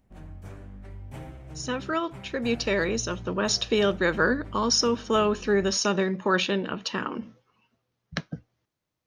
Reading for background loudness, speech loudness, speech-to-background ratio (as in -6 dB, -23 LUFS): -43.0 LUFS, -26.0 LUFS, 17.0 dB